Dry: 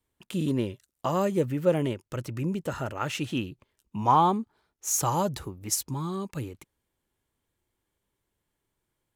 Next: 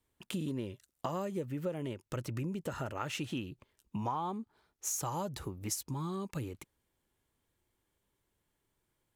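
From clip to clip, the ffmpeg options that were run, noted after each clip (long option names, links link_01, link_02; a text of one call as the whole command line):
ffmpeg -i in.wav -af "acompressor=threshold=-34dB:ratio=6" out.wav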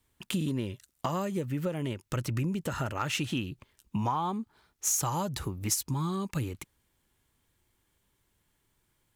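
ffmpeg -i in.wav -af "equalizer=frequency=490:width_type=o:width=1.8:gain=-5.5,volume=28dB,asoftclip=hard,volume=-28dB,volume=8dB" out.wav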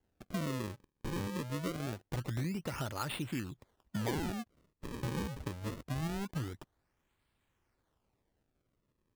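ffmpeg -i in.wav -filter_complex "[0:a]acrossover=split=1900[link_01][link_02];[link_02]alimiter=level_in=2.5dB:limit=-24dB:level=0:latency=1:release=456,volume=-2.5dB[link_03];[link_01][link_03]amix=inputs=2:normalize=0,acrusher=samples=36:mix=1:aa=0.000001:lfo=1:lforange=57.6:lforate=0.24,volume=-5.5dB" out.wav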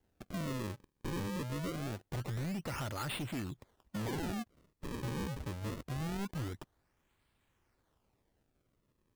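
ffmpeg -i in.wav -af "asoftclip=type=hard:threshold=-37.5dB,volume=2.5dB" out.wav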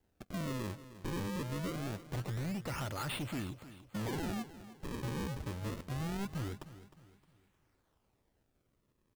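ffmpeg -i in.wav -af "aecho=1:1:309|618|927|1236:0.178|0.0694|0.027|0.0105" out.wav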